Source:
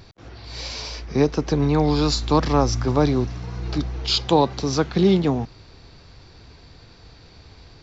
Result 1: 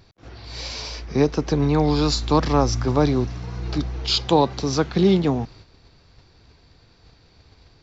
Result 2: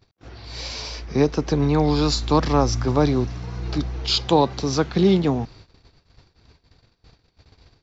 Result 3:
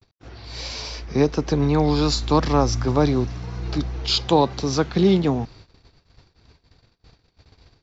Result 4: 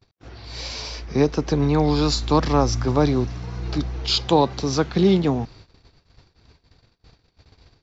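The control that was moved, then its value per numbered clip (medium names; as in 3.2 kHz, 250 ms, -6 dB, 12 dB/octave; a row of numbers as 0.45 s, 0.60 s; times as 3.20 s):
gate, range: -7 dB, -23 dB, -60 dB, -36 dB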